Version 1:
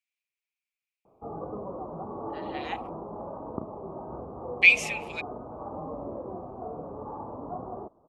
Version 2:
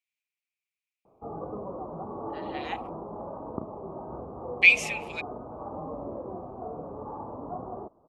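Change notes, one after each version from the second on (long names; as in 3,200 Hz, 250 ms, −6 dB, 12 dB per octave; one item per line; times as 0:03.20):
nothing changed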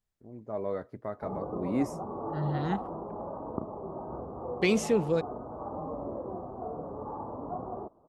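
first voice: unmuted
second voice: remove high-pass with resonance 2,400 Hz, resonance Q 9.1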